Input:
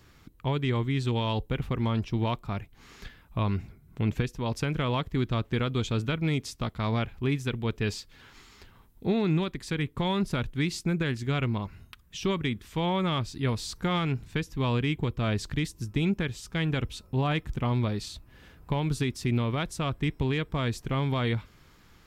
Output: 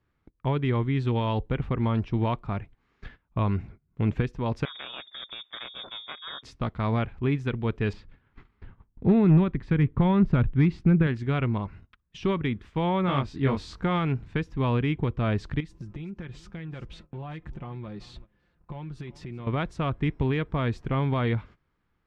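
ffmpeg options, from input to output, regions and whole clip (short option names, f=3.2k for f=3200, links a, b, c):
-filter_complex "[0:a]asettb=1/sr,asplit=3[a][b][c];[a]atrim=end=4.654[d];[b]atrim=start=4.65:end=6.43,asetpts=PTS-STARTPTS,afade=t=in:d=0.004:c=qsin,afade=t=out:st=1.776:d=0.004:c=qsin,equalizer=f=480:w=0.5:g=-12.5,aeval=exprs='val(0)*sin(2*PI*170*n/s)':c=same,lowpass=f=3.1k:t=q:w=0.5098,lowpass=f=3.1k:t=q:w=0.6013,lowpass=f=3.1k:t=q:w=0.9,lowpass=f=3.1k:t=q:w=2.563,afreqshift=-3700[e];[c]atrim=start=6.426[f];[d][e]acrossfade=d=0.004:c1=hsin:c2=qsin[g];[g][f]acrossfade=d=0.004:c1=qsin:c2=hsin,asettb=1/sr,asplit=3[h][i][j];[h]atrim=end=7.934[k];[i]atrim=start=7.93:end=11.07,asetpts=PTS-STARTPTS,afade=t=in:d=0.004:c=qsin,afade=t=out:st=3.136:d=0.004:c=qsin,bass=f=250:g=8,treble=f=4k:g=-14,asoftclip=type=hard:threshold=-14.5dB[l];[j]atrim=start=11.066[m];[k][l]acrossfade=d=0.004:c1=hsin:c2=qsin[n];[n][m]acrossfade=d=0.004:c1=qsin:c2=hsin,asettb=1/sr,asplit=3[o][p][q];[o]atrim=end=13.064[r];[p]atrim=start=13.06:end=13.82,asetpts=PTS-STARTPTS,afade=t=in:d=0.004:c=qsin,afade=t=out:st=0.756:d=0.004:c=qsin,equalizer=f=110:t=o:w=0.32:g=-7.5,asplit=2[s][t];[t]adelay=22,volume=-2dB[u];[s][u]amix=inputs=2:normalize=0,atrim=end_sample=33516[v];[q]atrim=start=13.816[w];[r][v]acrossfade=d=0.004:c1=hsin:c2=qsin[x];[x][w]acrossfade=d=0.004:c1=qsin:c2=hsin,asettb=1/sr,asplit=3[y][z][aa];[y]atrim=end=15.604[ab];[z]atrim=start=15.6:end=19.47,asetpts=PTS-STARTPTS,afade=t=in:d=0.004:c=qsin,afade=t=out:st=3.866:d=0.004:c=qsin,aecho=1:1:5.7:0.46,atrim=end_sample=170667,acompressor=threshold=-36dB:ratio=10:attack=3.2:release=140:knee=1:detection=peak,aecho=1:1:383:0.126,atrim=end_sample=170667[ac];[aa]atrim=start=19.466[ad];[ab][ac]acrossfade=d=0.004:c1=hsin:c2=qsin[ae];[ae][ad]acrossfade=d=0.004:c1=qsin:c2=hsin,agate=range=-19dB:threshold=-46dB:ratio=16:detection=peak,lowpass=1.9k,aemphasis=mode=production:type=cd,volume=2.5dB"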